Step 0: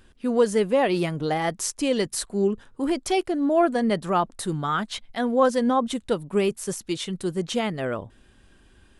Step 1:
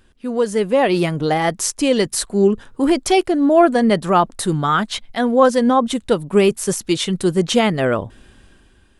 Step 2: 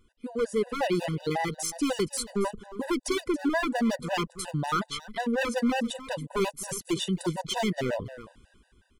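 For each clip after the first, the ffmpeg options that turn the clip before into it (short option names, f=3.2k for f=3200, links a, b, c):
-af "dynaudnorm=f=150:g=9:m=11.5dB"
-af "aeval=exprs='0.251*(abs(mod(val(0)/0.251+3,4)-2)-1)':c=same,aecho=1:1:279:0.168,afftfilt=real='re*gt(sin(2*PI*5.5*pts/sr)*(1-2*mod(floor(b*sr/1024/500),2)),0)':imag='im*gt(sin(2*PI*5.5*pts/sr)*(1-2*mod(floor(b*sr/1024/500),2)),0)':win_size=1024:overlap=0.75,volume=-7dB"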